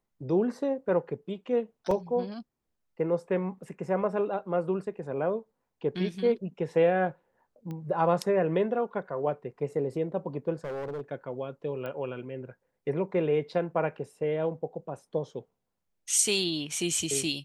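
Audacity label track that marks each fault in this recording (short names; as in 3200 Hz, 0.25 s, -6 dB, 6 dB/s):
1.910000	1.910000	gap 3.6 ms
7.710000	7.710000	pop -27 dBFS
10.640000	11.010000	clipped -32 dBFS
11.860000	11.860000	pop -25 dBFS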